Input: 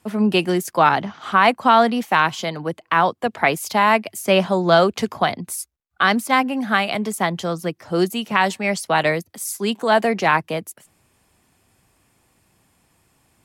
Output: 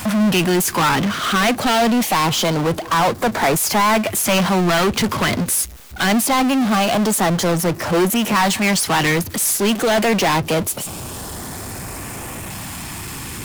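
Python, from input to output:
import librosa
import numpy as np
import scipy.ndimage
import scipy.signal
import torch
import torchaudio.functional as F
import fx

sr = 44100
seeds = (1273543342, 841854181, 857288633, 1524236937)

y = np.clip(x, -10.0 ** (-13.5 / 20.0), 10.0 ** (-13.5 / 20.0))
y = fx.filter_lfo_notch(y, sr, shape='saw_up', hz=0.24, low_hz=400.0, high_hz=4800.0, q=1.4)
y = fx.power_curve(y, sr, exponent=0.35)
y = y * librosa.db_to_amplitude(-1.0)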